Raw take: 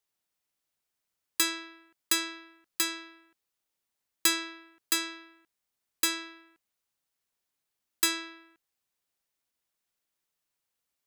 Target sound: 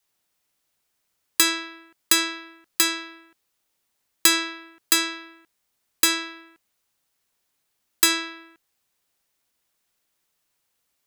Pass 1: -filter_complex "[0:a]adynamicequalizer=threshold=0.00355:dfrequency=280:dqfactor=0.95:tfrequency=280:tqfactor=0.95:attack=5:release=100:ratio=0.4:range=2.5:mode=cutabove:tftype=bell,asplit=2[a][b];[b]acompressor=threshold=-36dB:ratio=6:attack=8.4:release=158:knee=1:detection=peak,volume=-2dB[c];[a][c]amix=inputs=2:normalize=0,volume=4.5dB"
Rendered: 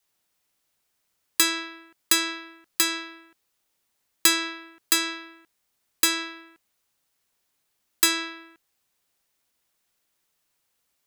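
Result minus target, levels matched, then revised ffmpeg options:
compressor: peak gain reduction +8.5 dB
-filter_complex "[0:a]adynamicequalizer=threshold=0.00355:dfrequency=280:dqfactor=0.95:tfrequency=280:tqfactor=0.95:attack=5:release=100:ratio=0.4:range=2.5:mode=cutabove:tftype=bell,asplit=2[a][b];[b]acompressor=threshold=-25.5dB:ratio=6:attack=8.4:release=158:knee=1:detection=peak,volume=-2dB[c];[a][c]amix=inputs=2:normalize=0,volume=4.5dB"

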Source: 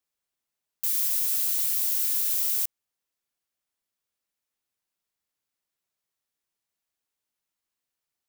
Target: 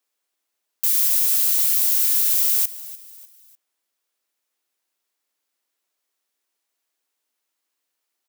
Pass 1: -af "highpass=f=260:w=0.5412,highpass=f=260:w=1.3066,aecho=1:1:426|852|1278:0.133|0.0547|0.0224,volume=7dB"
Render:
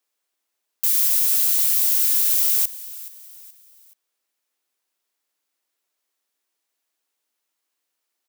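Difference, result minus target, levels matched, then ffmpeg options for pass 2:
echo 0.127 s late
-af "highpass=f=260:w=0.5412,highpass=f=260:w=1.3066,aecho=1:1:299|598|897:0.133|0.0547|0.0224,volume=7dB"

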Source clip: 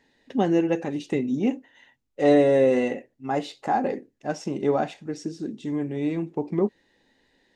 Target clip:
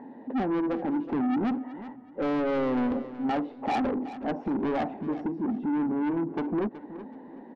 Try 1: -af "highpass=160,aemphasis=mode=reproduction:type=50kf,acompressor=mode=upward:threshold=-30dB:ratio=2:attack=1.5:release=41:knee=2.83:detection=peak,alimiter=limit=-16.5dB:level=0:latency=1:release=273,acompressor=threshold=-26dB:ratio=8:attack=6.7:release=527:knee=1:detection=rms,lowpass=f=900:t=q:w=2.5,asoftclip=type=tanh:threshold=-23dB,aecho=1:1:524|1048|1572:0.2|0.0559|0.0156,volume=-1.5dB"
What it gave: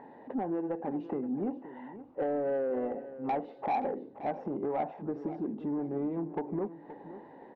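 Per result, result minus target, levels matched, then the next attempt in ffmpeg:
echo 0.15 s late; compressor: peak gain reduction +7.5 dB; 250 Hz band -2.5 dB
-af "highpass=160,aemphasis=mode=reproduction:type=50kf,acompressor=mode=upward:threshold=-30dB:ratio=2:attack=1.5:release=41:knee=2.83:detection=peak,alimiter=limit=-16.5dB:level=0:latency=1:release=273,acompressor=threshold=-26dB:ratio=8:attack=6.7:release=527:knee=1:detection=rms,lowpass=f=900:t=q:w=2.5,asoftclip=type=tanh:threshold=-23dB,aecho=1:1:374|748|1122:0.2|0.0559|0.0156,volume=-1.5dB"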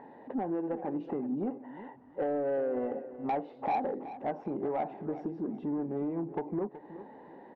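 compressor: peak gain reduction +7.5 dB; 250 Hz band -2.5 dB
-af "highpass=160,aemphasis=mode=reproduction:type=50kf,acompressor=mode=upward:threshold=-30dB:ratio=2:attack=1.5:release=41:knee=2.83:detection=peak,alimiter=limit=-16.5dB:level=0:latency=1:release=273,lowpass=f=900:t=q:w=2.5,asoftclip=type=tanh:threshold=-23dB,aecho=1:1:374|748|1122:0.2|0.0559|0.0156,volume=-1.5dB"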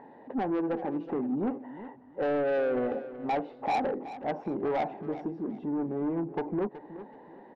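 250 Hz band -3.0 dB
-af "highpass=160,aemphasis=mode=reproduction:type=50kf,acompressor=mode=upward:threshold=-30dB:ratio=2:attack=1.5:release=41:knee=2.83:detection=peak,alimiter=limit=-16.5dB:level=0:latency=1:release=273,lowpass=f=900:t=q:w=2.5,equalizer=f=250:t=o:w=0.68:g=13.5,asoftclip=type=tanh:threshold=-23dB,aecho=1:1:374|748|1122:0.2|0.0559|0.0156,volume=-1.5dB"

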